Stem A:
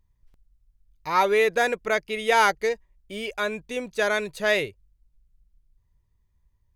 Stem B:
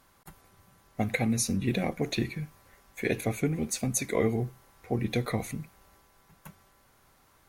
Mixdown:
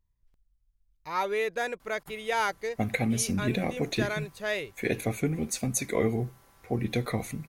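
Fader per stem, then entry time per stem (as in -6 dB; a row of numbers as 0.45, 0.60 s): -8.5, 0.0 dB; 0.00, 1.80 s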